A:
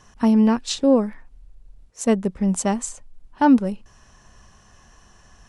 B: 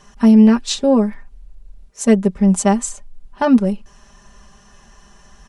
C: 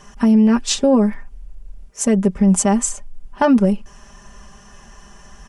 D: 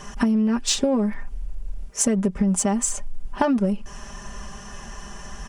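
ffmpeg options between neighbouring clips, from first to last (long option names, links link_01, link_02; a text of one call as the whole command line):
ffmpeg -i in.wav -af "aecho=1:1:5:0.78,volume=2.5dB" out.wav
ffmpeg -i in.wav -af "equalizer=frequency=4000:width=5.1:gain=-7,alimiter=level_in=9.5dB:limit=-1dB:release=50:level=0:latency=1,volume=-5.5dB" out.wav
ffmpeg -i in.wav -filter_complex "[0:a]acompressor=threshold=-22dB:ratio=10,asplit=2[link_01][link_02];[link_02]asoftclip=type=hard:threshold=-30dB,volume=-11dB[link_03];[link_01][link_03]amix=inputs=2:normalize=0,volume=3.5dB" out.wav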